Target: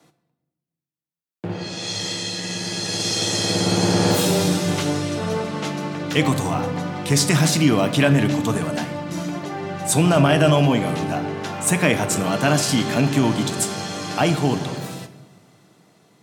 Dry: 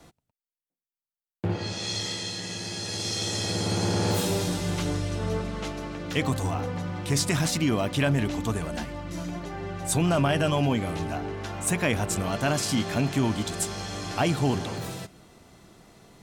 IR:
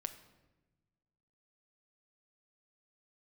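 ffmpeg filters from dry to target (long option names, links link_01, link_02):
-filter_complex "[1:a]atrim=start_sample=2205[link_01];[0:a][link_01]afir=irnorm=-1:irlink=0,dynaudnorm=framelen=430:gausssize=9:maxgain=11.5dB,highpass=frequency=120:width=0.5412,highpass=frequency=120:width=1.3066,volume=-1dB"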